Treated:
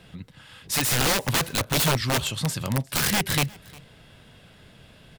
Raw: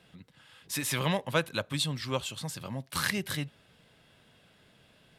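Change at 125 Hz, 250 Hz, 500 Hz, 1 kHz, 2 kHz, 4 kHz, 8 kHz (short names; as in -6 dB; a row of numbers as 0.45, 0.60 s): +8.5, +6.0, +4.0, +8.0, +7.0, +8.5, +11.0 dB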